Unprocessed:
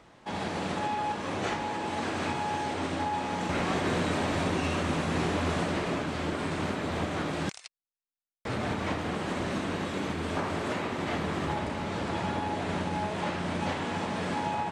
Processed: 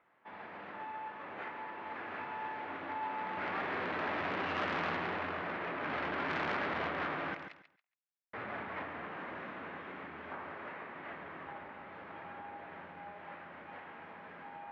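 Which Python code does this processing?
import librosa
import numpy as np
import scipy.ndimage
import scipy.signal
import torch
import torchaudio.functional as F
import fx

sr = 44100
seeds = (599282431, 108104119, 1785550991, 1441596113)

y = fx.doppler_pass(x, sr, speed_mps=12, closest_m=5.6, pass_at_s=5.74)
y = scipy.signal.sosfilt(scipy.signal.butter(4, 2000.0, 'lowpass', fs=sr, output='sos'), y)
y = fx.tilt_eq(y, sr, slope=4.5)
y = fx.over_compress(y, sr, threshold_db=-41.0, ratio=-1.0)
y = fx.echo_feedback(y, sr, ms=139, feedback_pct=21, wet_db=-10.0)
y = fx.transformer_sat(y, sr, knee_hz=1500.0)
y = y * librosa.db_to_amplitude(7.5)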